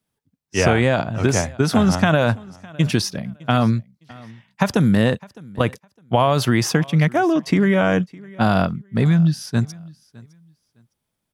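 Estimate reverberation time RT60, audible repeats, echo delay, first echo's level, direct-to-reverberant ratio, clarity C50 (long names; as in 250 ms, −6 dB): no reverb audible, 1, 609 ms, −23.0 dB, no reverb audible, no reverb audible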